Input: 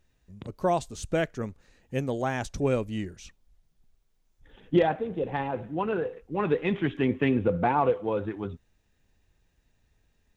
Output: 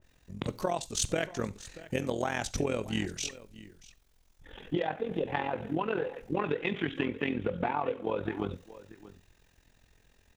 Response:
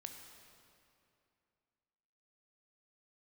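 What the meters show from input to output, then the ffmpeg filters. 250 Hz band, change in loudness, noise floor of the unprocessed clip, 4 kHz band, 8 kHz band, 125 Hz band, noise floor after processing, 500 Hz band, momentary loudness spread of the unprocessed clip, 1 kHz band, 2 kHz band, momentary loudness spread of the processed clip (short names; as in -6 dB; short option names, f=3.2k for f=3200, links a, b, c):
-5.0 dB, -4.5 dB, -70 dBFS, +4.0 dB, n/a, -5.5 dB, -66 dBFS, -5.5 dB, 11 LU, -5.0 dB, -1.0 dB, 17 LU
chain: -filter_complex "[0:a]lowshelf=f=270:g=-6,acompressor=threshold=-36dB:ratio=12,tremolo=f=43:d=0.788,aecho=1:1:633:0.133,asplit=2[a][b];[1:a]atrim=start_sample=2205,atrim=end_sample=3969[c];[b][c]afir=irnorm=-1:irlink=0,volume=1dB[d];[a][d]amix=inputs=2:normalize=0,adynamicequalizer=threshold=0.00126:dfrequency=1900:dqfactor=0.7:tfrequency=1900:tqfactor=0.7:attack=5:release=100:ratio=0.375:range=2.5:mode=boostabove:tftype=highshelf,volume=7.5dB"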